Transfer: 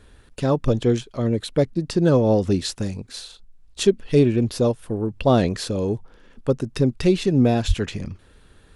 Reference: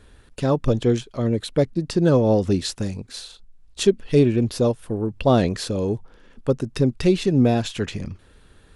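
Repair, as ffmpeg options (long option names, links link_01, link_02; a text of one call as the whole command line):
ffmpeg -i in.wav -filter_complex "[0:a]asplit=3[link_01][link_02][link_03];[link_01]afade=type=out:start_time=7.67:duration=0.02[link_04];[link_02]highpass=frequency=140:width=0.5412,highpass=frequency=140:width=1.3066,afade=type=in:start_time=7.67:duration=0.02,afade=type=out:start_time=7.79:duration=0.02[link_05];[link_03]afade=type=in:start_time=7.79:duration=0.02[link_06];[link_04][link_05][link_06]amix=inputs=3:normalize=0" out.wav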